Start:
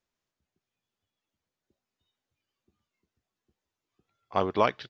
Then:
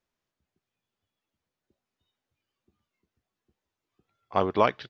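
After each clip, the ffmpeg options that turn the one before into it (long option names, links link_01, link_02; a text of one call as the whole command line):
ffmpeg -i in.wav -af "highshelf=frequency=5500:gain=-7.5,volume=2dB" out.wav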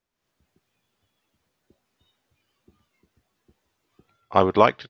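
ffmpeg -i in.wav -af "dynaudnorm=framelen=100:gausssize=5:maxgain=12dB" out.wav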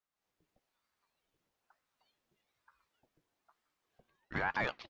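ffmpeg -i in.wav -af "alimiter=limit=-12dB:level=0:latency=1:release=16,asoftclip=type=tanh:threshold=-15dB,aeval=exprs='val(0)*sin(2*PI*760*n/s+760*0.7/1.1*sin(2*PI*1.1*n/s))':channel_layout=same,volume=-7dB" out.wav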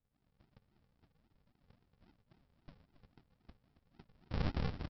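ffmpeg -i in.wav -af "acompressor=threshold=-41dB:ratio=16,aresample=11025,acrusher=samples=27:mix=1:aa=0.000001:lfo=1:lforange=16.2:lforate=3.7,aresample=44100,aecho=1:1:274:0.237,volume=11.5dB" out.wav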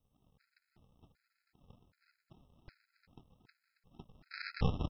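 ffmpeg -i in.wav -af "afftfilt=real='re*gt(sin(2*PI*1.3*pts/sr)*(1-2*mod(floor(b*sr/1024/1300),2)),0)':imag='im*gt(sin(2*PI*1.3*pts/sr)*(1-2*mod(floor(b*sr/1024/1300),2)),0)':win_size=1024:overlap=0.75,volume=7dB" out.wav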